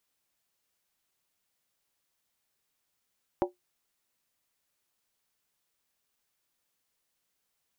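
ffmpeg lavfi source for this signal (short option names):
-f lavfi -i "aevalsrc='0.0891*pow(10,-3*t/0.15)*sin(2*PI*359*t)+0.0631*pow(10,-3*t/0.119)*sin(2*PI*572.2*t)+0.0447*pow(10,-3*t/0.103)*sin(2*PI*766.8*t)+0.0316*pow(10,-3*t/0.099)*sin(2*PI*824.3*t)+0.0224*pow(10,-3*t/0.092)*sin(2*PI*952.4*t)':d=0.63:s=44100"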